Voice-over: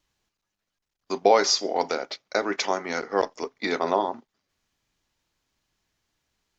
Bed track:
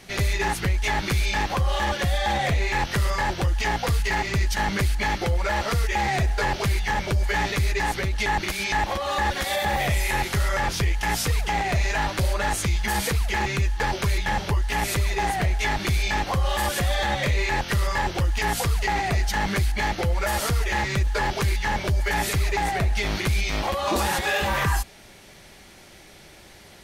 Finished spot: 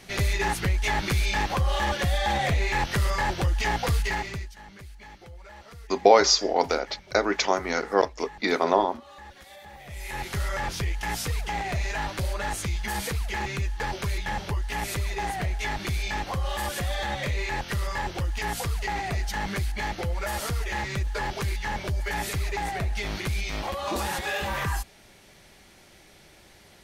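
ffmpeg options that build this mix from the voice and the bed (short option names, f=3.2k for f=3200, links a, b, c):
-filter_complex "[0:a]adelay=4800,volume=2dB[a];[1:a]volume=15dB,afade=t=out:st=3.99:d=0.53:silence=0.0944061,afade=t=in:st=9.85:d=0.54:silence=0.149624[b];[a][b]amix=inputs=2:normalize=0"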